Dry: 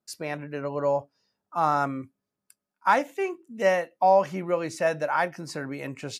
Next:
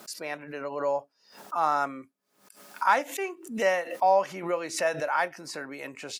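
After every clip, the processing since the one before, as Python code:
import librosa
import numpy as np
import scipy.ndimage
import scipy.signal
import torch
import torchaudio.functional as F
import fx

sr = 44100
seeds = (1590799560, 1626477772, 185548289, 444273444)

y = scipy.signal.sosfilt(scipy.signal.butter(2, 220.0, 'highpass', fs=sr, output='sos'), x)
y = fx.low_shelf(y, sr, hz=460.0, db=-8.0)
y = fx.pre_swell(y, sr, db_per_s=110.0)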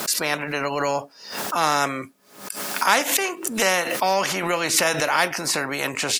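y = fx.spectral_comp(x, sr, ratio=2.0)
y = y * 10.0 ** (6.0 / 20.0)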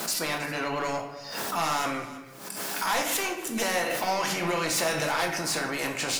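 y = 10.0 ** (-19.5 / 20.0) * np.tanh(x / 10.0 ** (-19.5 / 20.0))
y = y + 10.0 ** (-17.0 / 20.0) * np.pad(y, (int(321 * sr / 1000.0), 0))[:len(y)]
y = fx.room_shoebox(y, sr, seeds[0], volume_m3=200.0, walls='mixed', distance_m=0.72)
y = y * 10.0 ** (-4.0 / 20.0)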